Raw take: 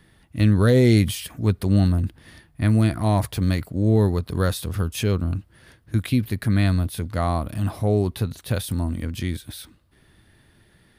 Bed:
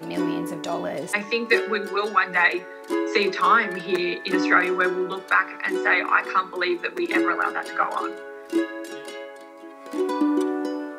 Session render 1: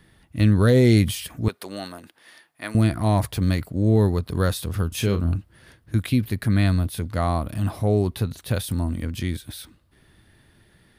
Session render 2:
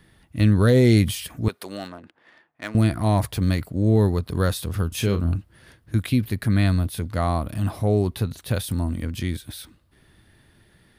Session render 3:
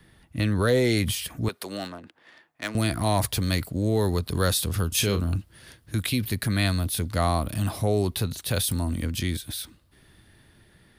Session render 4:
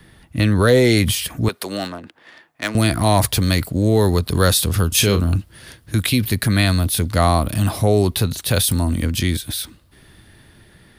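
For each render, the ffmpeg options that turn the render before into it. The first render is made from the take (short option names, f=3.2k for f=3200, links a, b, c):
-filter_complex "[0:a]asettb=1/sr,asplit=3[a][b][c];[a]atrim=end=1.484[d];[b]atrim=start=1.48:end=2.75,asetpts=PTS-STARTPTS,afade=t=in:d=0.004:c=qsin,afade=t=out:st=1.266:d=0.004:c=qsin,highpass=580[e];[c]atrim=start=2.746[f];[d][e]acrossfade=d=0.004:c1=hsin:c2=qsin[g];[g][f]acrossfade=d=0.004:c1=qsin:c2=hsin,asettb=1/sr,asplit=3[h][i][j];[h]atrim=end=4.884[k];[i]atrim=start=4.88:end=5.36,asetpts=PTS-STARTPTS,afade=t=in:d=0.004:c=qsin,afade=t=out:st=0.476:d=0.004:c=qsin,asplit=2[l][m];[m]adelay=35,volume=-8.5dB[n];[l][n]amix=inputs=2:normalize=0,atrim=end_sample=21168[o];[j]atrim=start=5.356[p];[k][o]acrossfade=d=0.004:c1=hsin:c2=qsin[q];[q][p]acrossfade=d=0.004:c1=qsin:c2=hsin"
-filter_complex "[0:a]asettb=1/sr,asplit=3[a][b][c];[a]atrim=end=1.774[d];[b]atrim=start=1.77:end=2.78,asetpts=PTS-STARTPTS,afade=t=in:d=0.004:c=qsin,afade=t=out:st=1.006:d=0.004:c=qsin,adynamicsmooth=sensitivity=7:basefreq=1.8k[e];[c]atrim=start=2.776[f];[d][e]acrossfade=d=0.004:c1=hsin:c2=qsin[g];[g][f]acrossfade=d=0.004:c1=qsin:c2=hsin"
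-filter_complex "[0:a]acrossover=split=410|450|3000[a][b][c][d];[a]alimiter=limit=-19.5dB:level=0:latency=1[e];[d]dynaudnorm=f=560:g=7:m=7.5dB[f];[e][b][c][f]amix=inputs=4:normalize=0"
-af "volume=8dB,alimiter=limit=-2dB:level=0:latency=1"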